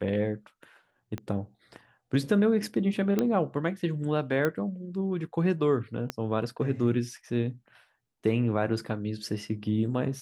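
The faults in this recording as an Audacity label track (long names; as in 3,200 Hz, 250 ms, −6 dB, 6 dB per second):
1.180000	1.180000	click −22 dBFS
3.190000	3.190000	click −13 dBFS
4.450000	4.450000	click −14 dBFS
6.100000	6.100000	click −15 dBFS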